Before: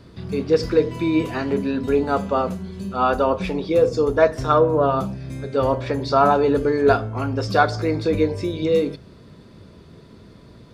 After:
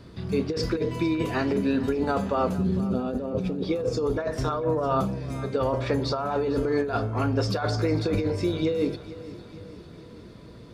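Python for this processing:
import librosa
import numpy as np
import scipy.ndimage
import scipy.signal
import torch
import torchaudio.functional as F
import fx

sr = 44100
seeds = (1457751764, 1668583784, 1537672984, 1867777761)

y = fx.graphic_eq(x, sr, hz=(125, 250, 500, 1000, 2000), db=(12, 11, 8, -11, -4), at=(2.58, 3.63))
y = fx.over_compress(y, sr, threshold_db=-21.0, ratio=-1.0)
y = fx.echo_feedback(y, sr, ms=452, feedback_pct=58, wet_db=-16.5)
y = F.gain(torch.from_numpy(y), -4.0).numpy()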